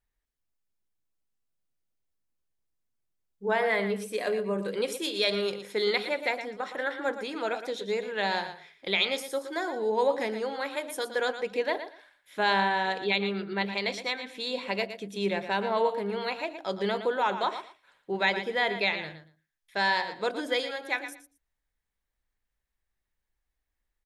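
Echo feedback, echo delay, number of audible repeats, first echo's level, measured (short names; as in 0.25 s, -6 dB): 18%, 0.116 s, 2, -10.5 dB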